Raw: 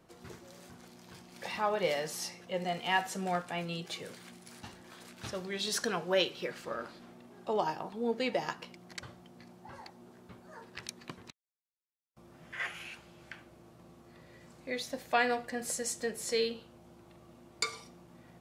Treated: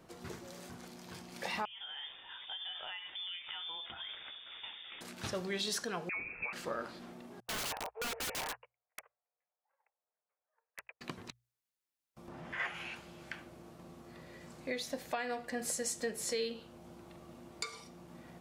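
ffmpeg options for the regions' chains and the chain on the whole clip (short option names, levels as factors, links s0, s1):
-filter_complex "[0:a]asettb=1/sr,asplit=3[s0][s1][s2];[s0]atrim=end=1.654[s3];[s1]atrim=start=1.65:end=5.01,asetpts=PTS-STARTPTS,afade=t=in:d=0.004:c=qsin,afade=t=out:st=3.356:d=0.004:c=qsin,aeval=exprs='val(0)+0.000891*(sin(2*PI*60*n/s)+sin(2*PI*2*60*n/s)/2+sin(2*PI*3*60*n/s)/3+sin(2*PI*4*60*n/s)/4+sin(2*PI*5*60*n/s)/5)':c=same,acompressor=threshold=0.00794:ratio=16:attack=3.2:release=140:knee=1:detection=peak,lowpass=f=3100:t=q:w=0.5098,lowpass=f=3100:t=q:w=0.6013,lowpass=f=3100:t=q:w=0.9,lowpass=f=3100:t=q:w=2.563,afreqshift=-3700[s4];[s2]atrim=start=5.006[s5];[s3][s4]acrossfade=d=0.004:c1=hsin:c2=qsin[s6];[s6][s5]acrossfade=d=0.004:c1=qsin:c2=hsin,asettb=1/sr,asplit=3[s7][s8][s9];[s7]atrim=end=6.094[s10];[s8]atrim=start=6.09:end=6.53,asetpts=PTS-STARTPTS,afade=t=in:d=0.004:c=qsin,afade=t=out:st=0.436:d=0.004:c=qsin,acompressor=threshold=0.0178:ratio=10:attack=3.2:release=140:knee=1:detection=peak,lowpass=f=2400:t=q:w=0.5098,lowpass=f=2400:t=q:w=0.6013,lowpass=f=2400:t=q:w=0.9,lowpass=f=2400:t=q:w=2.563,afreqshift=-2800[s11];[s9]atrim=start=6.526[s12];[s10][s11]acrossfade=d=0.004:c1=hsin:c2=qsin[s13];[s13][s12]acrossfade=d=0.004:c1=qsin:c2=hsin,asettb=1/sr,asplit=3[s14][s15][s16];[s14]atrim=end=7.404[s17];[s15]atrim=start=7.4:end=11.01,asetpts=PTS-STARTPTS,afade=t=in:d=0.004:c=qsin,afade=t=out:st=3.606:d=0.004:c=qsin,agate=range=0.0112:threshold=0.00631:ratio=16:release=100:detection=peak,asuperpass=centerf=1100:order=20:qfactor=0.5,aeval=exprs='(mod(56.2*val(0)+1,2)-1)/56.2':c=same[s18];[s16]atrim=start=11.006[s19];[s17][s18]acrossfade=d=0.004:c1=hsin:c2=qsin[s20];[s20][s19]acrossfade=d=0.004:c1=qsin:c2=hsin,asettb=1/sr,asplit=3[s21][s22][s23];[s21]atrim=end=12.284[s24];[s22]atrim=start=12.28:end=12.96,asetpts=PTS-STARTPTS,afade=t=in:d=0.004:c=qsin,afade=t=out:st=0.676:d=0.004:c=qsin,lowpass=f=3100:p=1,equalizer=f=900:t=o:w=0.57:g=4.5,acompressor=mode=upward:threshold=0.00631:ratio=2.5:attack=3.2:release=140:knee=2.83:detection=peak[s25];[s23]atrim=start=12.956[s26];[s24][s25]acrossfade=d=0.004:c1=hsin:c2=qsin[s27];[s27][s26]acrossfade=d=0.004:c1=qsin:c2=hsin,bandreject=f=60:t=h:w=6,bandreject=f=120:t=h:w=6,alimiter=level_in=1.19:limit=0.0631:level=0:latency=1:release=491,volume=0.841,acompressor=threshold=0.00794:ratio=1.5,volume=1.5"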